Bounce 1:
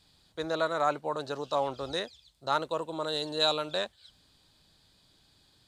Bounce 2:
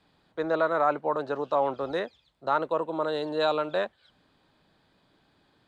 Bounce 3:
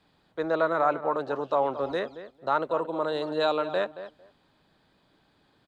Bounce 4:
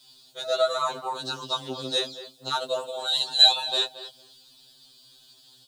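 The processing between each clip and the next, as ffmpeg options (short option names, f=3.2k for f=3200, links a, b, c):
-filter_complex "[0:a]acrossover=split=160 2400:gain=0.251 1 0.1[a][b][c];[a][b][c]amix=inputs=3:normalize=0,asplit=2[d][e];[e]alimiter=limit=-21.5dB:level=0:latency=1,volume=-1dB[f];[d][f]amix=inputs=2:normalize=0"
-filter_complex "[0:a]asplit=2[a][b];[b]adelay=225,lowpass=f=2.1k:p=1,volume=-12dB,asplit=2[c][d];[d]adelay=225,lowpass=f=2.1k:p=1,volume=0.16[e];[a][c][e]amix=inputs=3:normalize=0"
-af "aexciter=amount=11.3:drive=8:freq=3.2k,afftfilt=real='re*2.45*eq(mod(b,6),0)':imag='im*2.45*eq(mod(b,6),0)':win_size=2048:overlap=0.75"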